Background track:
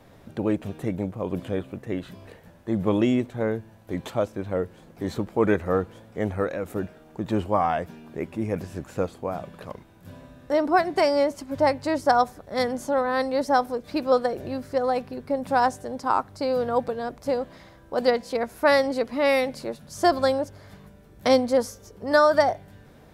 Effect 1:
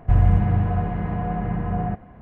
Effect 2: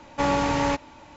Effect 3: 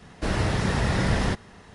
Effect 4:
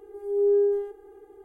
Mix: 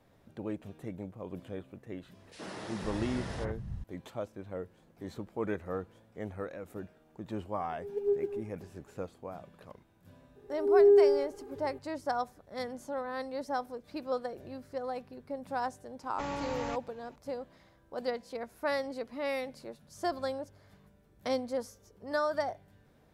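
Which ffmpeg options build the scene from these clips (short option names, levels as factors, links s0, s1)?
-filter_complex "[4:a]asplit=2[s0][s1];[0:a]volume=0.224[s2];[3:a]acrossover=split=170|2100[s3][s4][s5];[s4]adelay=70[s6];[s3]adelay=510[s7];[s7][s6][s5]amix=inputs=3:normalize=0[s8];[s0]aphaser=in_gain=1:out_gain=1:delay=4.8:decay=0.67:speed=1.9:type=sinusoidal[s9];[s1]dynaudnorm=f=180:g=3:m=3.76[s10];[s8]atrim=end=1.74,asetpts=PTS-STARTPTS,volume=0.211,afade=t=in:d=0.004:c=hsin,afade=t=out:st=1.736:d=0.004:c=hsin,adelay=2100[s11];[s9]atrim=end=1.44,asetpts=PTS-STARTPTS,volume=0.188,afade=t=in:d=0.004:c=hsin,afade=t=out:st=1.436:d=0.004:c=hsin,adelay=7580[s12];[s10]atrim=end=1.44,asetpts=PTS-STARTPTS,volume=0.299,afade=t=in:d=0.004:c=hsin,afade=t=out:st=1.436:d=0.004:c=hsin,adelay=10350[s13];[2:a]atrim=end=1.16,asetpts=PTS-STARTPTS,volume=0.2,afade=t=in:d=0.004:c=hsin,afade=t=out:st=1.156:d=0.004:c=hsin,adelay=16000[s14];[s2][s11][s12][s13][s14]amix=inputs=5:normalize=0"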